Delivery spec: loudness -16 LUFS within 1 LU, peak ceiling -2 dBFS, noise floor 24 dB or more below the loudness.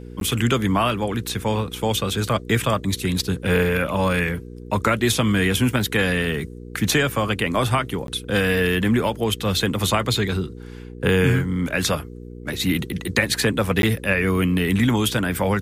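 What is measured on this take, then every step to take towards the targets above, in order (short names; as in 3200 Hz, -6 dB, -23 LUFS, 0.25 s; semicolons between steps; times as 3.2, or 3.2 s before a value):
dropouts 3; longest dropout 12 ms; hum 60 Hz; harmonics up to 480 Hz; hum level -35 dBFS; loudness -21.5 LUFS; peak -4.5 dBFS; loudness target -16.0 LUFS
-> interpolate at 0.2/8.07/13.82, 12 ms; de-hum 60 Hz, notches 8; gain +5.5 dB; limiter -2 dBFS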